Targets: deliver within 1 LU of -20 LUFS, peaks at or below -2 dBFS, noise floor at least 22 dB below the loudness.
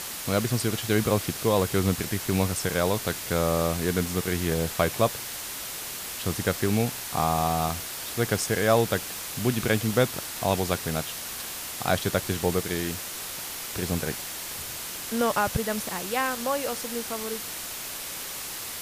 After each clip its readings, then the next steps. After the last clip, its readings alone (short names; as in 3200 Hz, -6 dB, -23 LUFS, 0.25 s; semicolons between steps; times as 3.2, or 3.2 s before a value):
dropouts 4; longest dropout 1.5 ms; noise floor -36 dBFS; noise floor target -49 dBFS; loudness -27.0 LUFS; peak -8.0 dBFS; loudness target -20.0 LUFS
-> interpolate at 2.51/4.06/7.69/16.68, 1.5 ms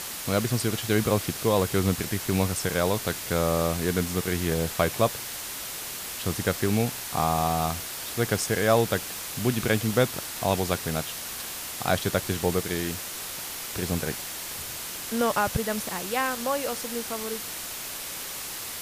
dropouts 0; noise floor -36 dBFS; noise floor target -49 dBFS
-> denoiser 13 dB, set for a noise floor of -36 dBFS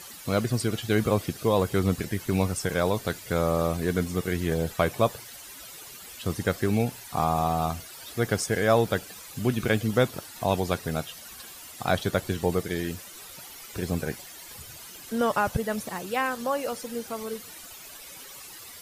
noise floor -45 dBFS; noise floor target -50 dBFS
-> denoiser 6 dB, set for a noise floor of -45 dBFS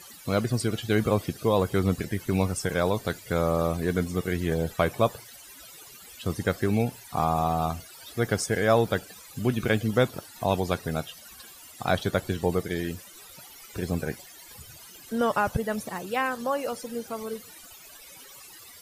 noise floor -48 dBFS; noise floor target -50 dBFS
-> denoiser 6 dB, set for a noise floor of -48 dBFS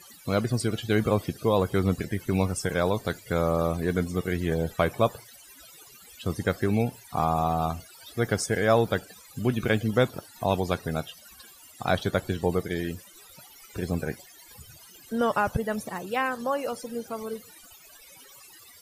noise floor -51 dBFS; loudness -27.5 LUFS; peak -8.5 dBFS; loudness target -20.0 LUFS
-> gain +7.5 dB; limiter -2 dBFS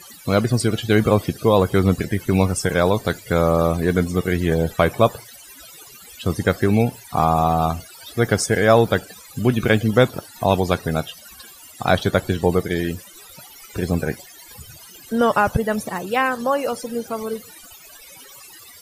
loudness -20.0 LUFS; peak -2.0 dBFS; noise floor -44 dBFS